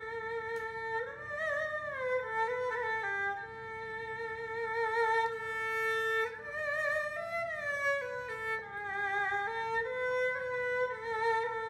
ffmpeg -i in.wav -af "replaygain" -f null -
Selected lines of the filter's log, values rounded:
track_gain = +15.4 dB
track_peak = 0.070